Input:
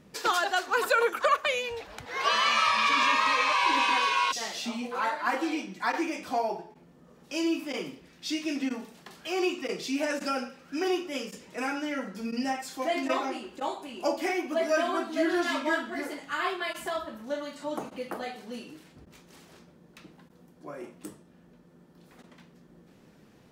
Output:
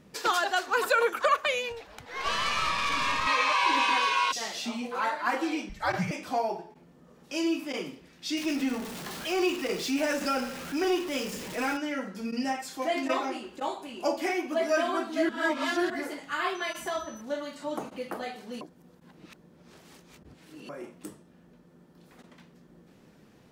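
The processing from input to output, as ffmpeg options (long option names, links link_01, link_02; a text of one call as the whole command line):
ffmpeg -i in.wav -filter_complex "[0:a]asettb=1/sr,asplit=3[link_01][link_02][link_03];[link_01]atrim=end=1.724[link_04];[link_02]atrim=start=1.72:end=3.27,asetpts=PTS-STARTPTS,afade=type=in:duration=0.004:curve=qsin,afade=type=out:start_time=1.546:duration=0.004:curve=qsin,aeval=exprs='(tanh(12.6*val(0)+0.7)-tanh(0.7))/12.6':channel_layout=same[link_05];[link_03]atrim=start=3.266[link_06];[link_04][link_05]acrossfade=duration=0.004:curve1=hsin:curve2=qsin[link_07];[link_07][link_06]acrossfade=duration=0.004:curve1=qsin:curve2=hsin,asettb=1/sr,asplit=3[link_08][link_09][link_10];[link_08]atrim=end=5.694[link_11];[link_09]atrim=start=5.69:end=6.11,asetpts=PTS-STARTPTS,afade=type=in:duration=0.004:curve=qsin,afade=type=out:start_time=0.416:duration=0.004:curve=qsin,afreqshift=-150[link_12];[link_10]atrim=start=6.106[link_13];[link_11][link_12]acrossfade=duration=0.004:curve1=hsin:curve2=qsin[link_14];[link_14][link_13]acrossfade=duration=0.004:curve1=qsin:curve2=hsin,asettb=1/sr,asplit=3[link_15][link_16][link_17];[link_15]atrim=end=8.374[link_18];[link_16]atrim=start=8.37:end=11.77,asetpts=PTS-STARTPTS,afade=type=in:duration=0.004:curve=qsin,afade=type=out:start_time=3.396:duration=0.004:curve=qsin,aeval=exprs='val(0)+0.5*0.0178*sgn(val(0))':channel_layout=same[link_19];[link_17]atrim=start=11.766[link_20];[link_18][link_19]acrossfade=duration=0.004:curve1=hsin:curve2=qsin[link_21];[link_21][link_20]acrossfade=duration=0.004:curve1=qsin:curve2=hsin,asettb=1/sr,asplit=3[link_22][link_23][link_24];[link_22]atrim=end=16.554[link_25];[link_23]atrim=start=16.55:end=17.21,asetpts=PTS-STARTPTS,afade=type=in:duration=0.004:curve=qsin,afade=type=out:start_time=0.656:duration=0.004:curve=qsin,aeval=exprs='val(0)+0.00355*sin(2*PI*6000*n/s)':channel_layout=same[link_26];[link_24]atrim=start=17.206[link_27];[link_25][link_26]acrossfade=duration=0.004:curve1=hsin:curve2=qsin[link_28];[link_28][link_27]acrossfade=duration=0.004:curve1=qsin:curve2=hsin,asplit=5[link_29][link_30][link_31][link_32][link_33];[link_29]atrim=end=15.292[link_34];[link_30]atrim=start=15.288:end=15.902,asetpts=PTS-STARTPTS,areverse[link_35];[link_31]atrim=start=15.898:end=18.612[link_36];[link_32]atrim=start=18.608:end=20.692,asetpts=PTS-STARTPTS,areverse[link_37];[link_33]atrim=start=20.688[link_38];[link_34][link_35]acrossfade=duration=0.004:curve1=hsin:curve2=hsin[link_39];[link_39][link_36]acrossfade=duration=0.004:curve1=hsin:curve2=hsin[link_40];[link_40][link_37]acrossfade=duration=0.004:curve1=hsin:curve2=hsin[link_41];[link_41][link_38]acrossfade=duration=0.004:curve1=hsin:curve2=hsin" out.wav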